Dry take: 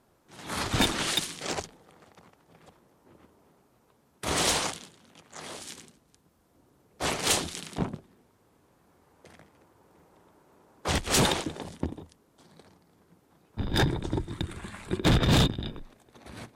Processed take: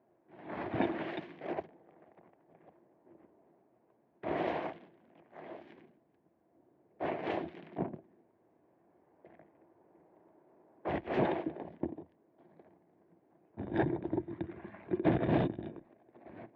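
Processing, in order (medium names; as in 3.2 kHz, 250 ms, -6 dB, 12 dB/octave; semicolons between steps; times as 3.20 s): cabinet simulation 130–2100 Hz, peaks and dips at 340 Hz +9 dB, 660 Hz +9 dB, 1.3 kHz -9 dB; trim -7.5 dB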